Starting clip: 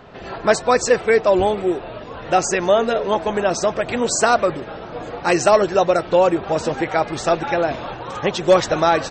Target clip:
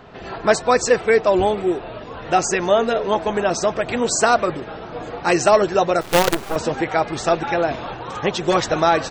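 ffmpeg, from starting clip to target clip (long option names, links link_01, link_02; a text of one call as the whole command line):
ffmpeg -i in.wav -filter_complex "[0:a]bandreject=frequency=560:width=15,asettb=1/sr,asplit=3[link_01][link_02][link_03];[link_01]atrim=end=6.014[link_04];[link_02]atrim=start=6.01:end=6.56,asetpts=PTS-STARTPTS,afade=type=in:duration=0.004:curve=qsin,afade=type=out:start_time=0.546:duration=0.004:curve=qsin,acrusher=bits=3:dc=4:mix=0:aa=0.000001[link_05];[link_03]atrim=start=6.556[link_06];[link_04][link_05]acrossfade=duration=0.004:curve1=hsin:curve2=qsin[link_07];[link_07][link_06]acrossfade=duration=0.004:curve1=qsin:curve2=hsin" out.wav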